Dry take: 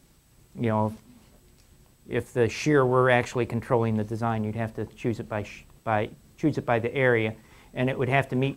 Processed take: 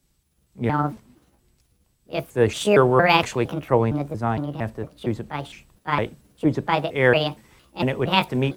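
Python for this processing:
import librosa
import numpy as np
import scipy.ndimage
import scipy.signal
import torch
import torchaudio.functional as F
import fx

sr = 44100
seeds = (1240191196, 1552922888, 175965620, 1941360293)

y = fx.pitch_trill(x, sr, semitones=5.5, every_ms=230)
y = fx.band_widen(y, sr, depth_pct=40)
y = y * librosa.db_to_amplitude(3.5)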